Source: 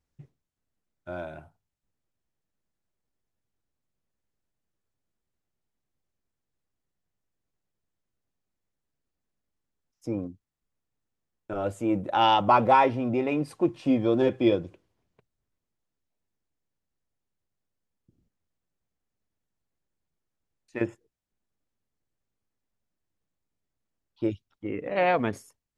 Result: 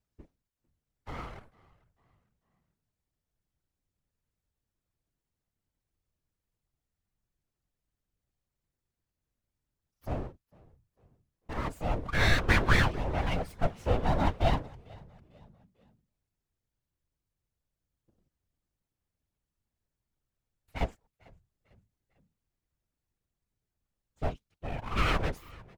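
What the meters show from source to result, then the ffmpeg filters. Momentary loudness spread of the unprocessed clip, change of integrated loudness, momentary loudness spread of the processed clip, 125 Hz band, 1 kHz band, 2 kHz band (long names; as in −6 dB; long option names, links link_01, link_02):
18 LU, −5.5 dB, 19 LU, +4.5 dB, −9.5 dB, +3.5 dB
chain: -filter_complex "[0:a]aeval=exprs='abs(val(0))':channel_layout=same,asplit=4[link_01][link_02][link_03][link_04];[link_02]adelay=448,afreqshift=-52,volume=-24dB[link_05];[link_03]adelay=896,afreqshift=-104,volume=-31.5dB[link_06];[link_04]adelay=1344,afreqshift=-156,volume=-39.1dB[link_07];[link_01][link_05][link_06][link_07]amix=inputs=4:normalize=0,afftfilt=real='hypot(re,im)*cos(2*PI*random(0))':imag='hypot(re,im)*sin(2*PI*random(1))':win_size=512:overlap=0.75,volume=4dB"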